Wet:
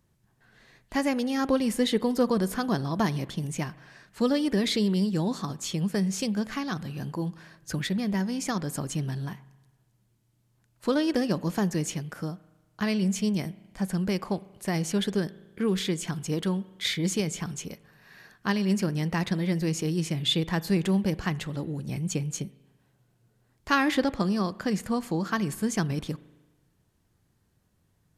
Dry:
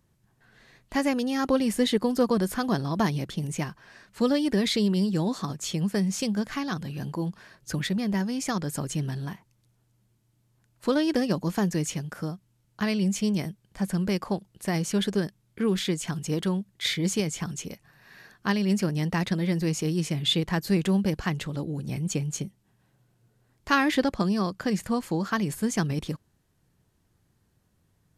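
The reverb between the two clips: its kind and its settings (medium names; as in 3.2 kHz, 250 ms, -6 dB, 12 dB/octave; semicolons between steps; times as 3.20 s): spring tank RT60 1.2 s, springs 37 ms, chirp 70 ms, DRR 18.5 dB; trim -1 dB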